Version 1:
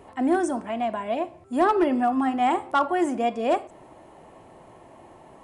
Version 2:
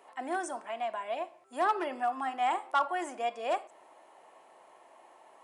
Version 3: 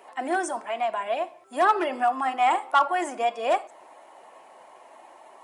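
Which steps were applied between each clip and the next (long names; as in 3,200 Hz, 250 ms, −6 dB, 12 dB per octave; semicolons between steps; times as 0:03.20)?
high-pass filter 670 Hz 12 dB per octave; level −4.5 dB
spectral magnitudes quantised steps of 15 dB; level +8 dB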